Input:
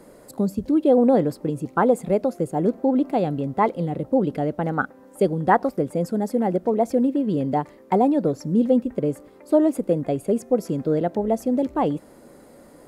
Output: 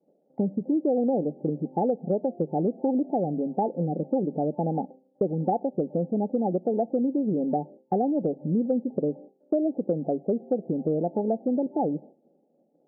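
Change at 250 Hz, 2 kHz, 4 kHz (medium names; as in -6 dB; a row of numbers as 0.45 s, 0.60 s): -4.5 dB, under -35 dB, no reading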